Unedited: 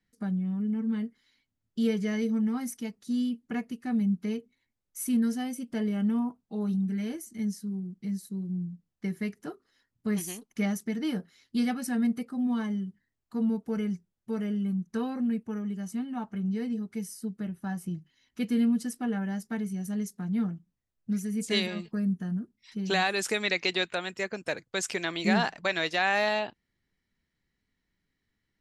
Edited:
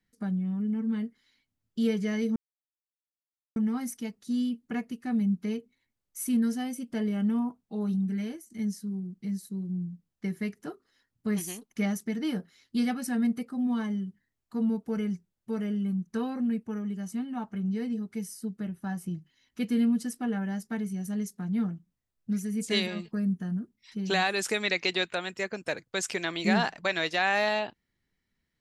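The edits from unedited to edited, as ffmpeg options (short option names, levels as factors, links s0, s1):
-filter_complex "[0:a]asplit=3[s0][s1][s2];[s0]atrim=end=2.36,asetpts=PTS-STARTPTS,afade=t=out:st=2.356:d=0.004:c=hsin,apad=pad_dur=1.2[s3];[s1]atrim=start=2.36:end=7.3,asetpts=PTS-STARTPTS,afade=t=in:d=0.004:c=hsin,afade=t=out:st=4.65:d=0.29:silence=0.223872[s4];[s2]atrim=start=7.3,asetpts=PTS-STARTPTS,afade=t=in:d=0.004:c=hsin:silence=0.223872[s5];[s3][s4][s5]concat=n=3:v=0:a=1"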